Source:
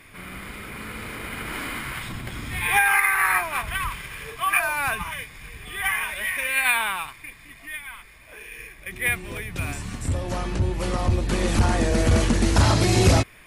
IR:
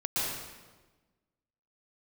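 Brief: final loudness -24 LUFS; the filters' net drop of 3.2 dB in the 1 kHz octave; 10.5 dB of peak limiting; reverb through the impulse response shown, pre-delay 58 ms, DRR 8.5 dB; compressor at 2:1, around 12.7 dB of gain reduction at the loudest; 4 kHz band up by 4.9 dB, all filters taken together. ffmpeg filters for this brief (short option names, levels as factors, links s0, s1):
-filter_complex "[0:a]equalizer=f=1000:t=o:g=-4.5,equalizer=f=4000:t=o:g=6.5,acompressor=threshold=0.0141:ratio=2,alimiter=level_in=1.5:limit=0.0631:level=0:latency=1,volume=0.668,asplit=2[s0][s1];[1:a]atrim=start_sample=2205,adelay=58[s2];[s1][s2]afir=irnorm=-1:irlink=0,volume=0.15[s3];[s0][s3]amix=inputs=2:normalize=0,volume=3.98"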